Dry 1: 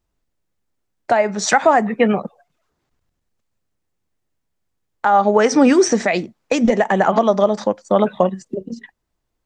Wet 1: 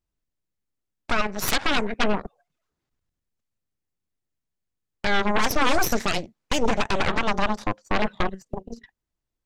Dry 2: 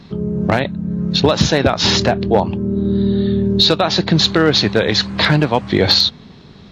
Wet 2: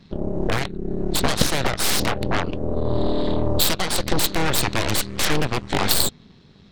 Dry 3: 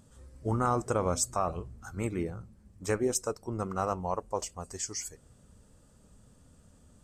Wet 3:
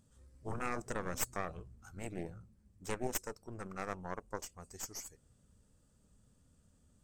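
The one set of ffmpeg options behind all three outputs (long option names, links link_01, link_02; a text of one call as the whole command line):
ffmpeg -i in.wav -af "equalizer=frequency=750:width_type=o:width=2.1:gain=-4,aeval=exprs='0.75*(cos(1*acos(clip(val(0)/0.75,-1,1)))-cos(1*PI/2))+0.376*(cos(3*acos(clip(val(0)/0.75,-1,1)))-cos(3*PI/2))+0.15*(cos(8*acos(clip(val(0)/0.75,-1,1)))-cos(8*PI/2))':channel_layout=same,volume=-3dB" out.wav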